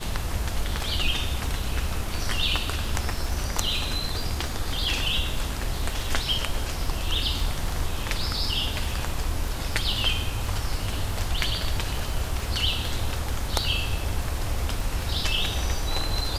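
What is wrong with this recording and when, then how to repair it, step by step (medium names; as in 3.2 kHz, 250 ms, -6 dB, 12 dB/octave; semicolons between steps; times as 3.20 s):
crackle 26 per s -31 dBFS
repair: de-click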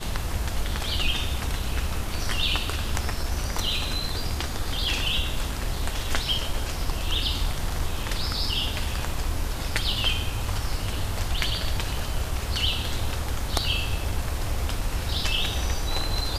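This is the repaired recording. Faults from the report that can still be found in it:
nothing left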